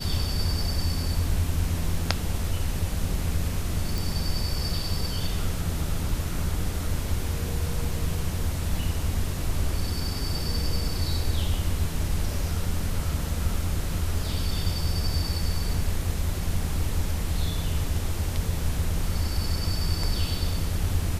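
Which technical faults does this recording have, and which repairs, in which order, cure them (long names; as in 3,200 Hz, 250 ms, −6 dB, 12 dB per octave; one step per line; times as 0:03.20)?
0:03.98: click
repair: click removal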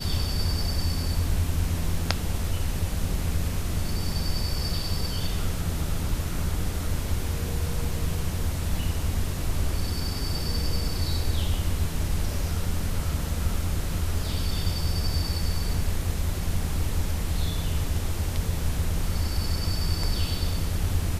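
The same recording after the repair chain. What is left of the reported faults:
none of them is left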